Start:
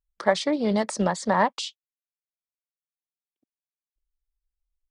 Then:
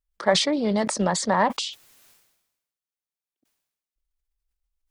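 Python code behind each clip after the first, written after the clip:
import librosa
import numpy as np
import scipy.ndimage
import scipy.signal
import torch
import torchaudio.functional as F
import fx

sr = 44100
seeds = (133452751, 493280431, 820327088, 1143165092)

y = fx.sustainer(x, sr, db_per_s=57.0)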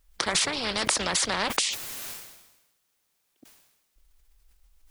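y = fx.spectral_comp(x, sr, ratio=4.0)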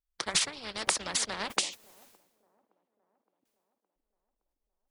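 y = fx.echo_wet_bandpass(x, sr, ms=566, feedback_pct=57, hz=430.0, wet_db=-9.0)
y = fx.upward_expand(y, sr, threshold_db=-39.0, expansion=2.5)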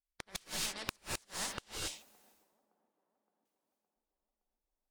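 y = fx.cheby_harmonics(x, sr, harmonics=(4,), levels_db=(-8,), full_scale_db=-6.0)
y = fx.rev_gated(y, sr, seeds[0], gate_ms=300, shape='rising', drr_db=1.0)
y = fx.gate_flip(y, sr, shuts_db=-13.0, range_db=-29)
y = y * librosa.db_to_amplitude(-8.5)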